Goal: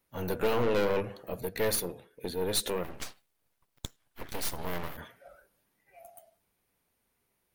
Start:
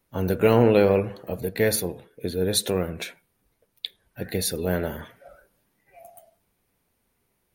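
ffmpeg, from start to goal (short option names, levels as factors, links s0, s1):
-filter_complex "[0:a]lowshelf=f=440:g=-5,aeval=exprs='(tanh(14.1*val(0)+0.65)-tanh(0.65))/14.1':c=same,asplit=3[s0][s1][s2];[s0]afade=t=out:st=2.83:d=0.02[s3];[s1]aeval=exprs='abs(val(0))':c=same,afade=t=in:st=2.83:d=0.02,afade=t=out:st=4.96:d=0.02[s4];[s2]afade=t=in:st=4.96:d=0.02[s5];[s3][s4][s5]amix=inputs=3:normalize=0"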